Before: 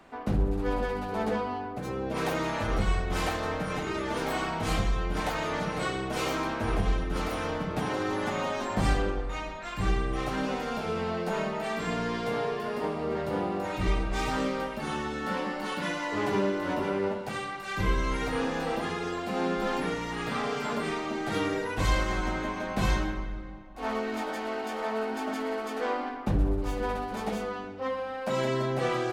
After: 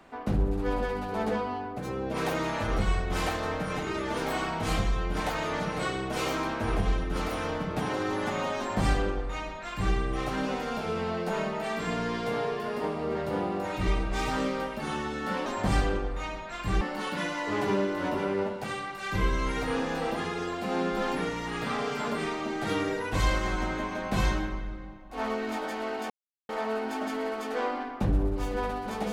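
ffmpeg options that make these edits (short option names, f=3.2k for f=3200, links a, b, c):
-filter_complex "[0:a]asplit=4[a][b][c][d];[a]atrim=end=15.462[e];[b]atrim=start=8.588:end=9.942[f];[c]atrim=start=15.458:end=24.75,asetpts=PTS-STARTPTS,afade=t=out:st=9.288:d=0.004:c=hsin,apad=pad_dur=0.39[g];[d]atrim=start=24.75,asetpts=PTS-STARTPTS,afade=t=in:d=0.004:c=hsin[h];[e][f]acrossfade=d=0.004:c1=hsin:c2=hsin[i];[g][h]concat=n=2:v=0:a=1[j];[i][j]acrossfade=d=0.004:c1=hsin:c2=hsin"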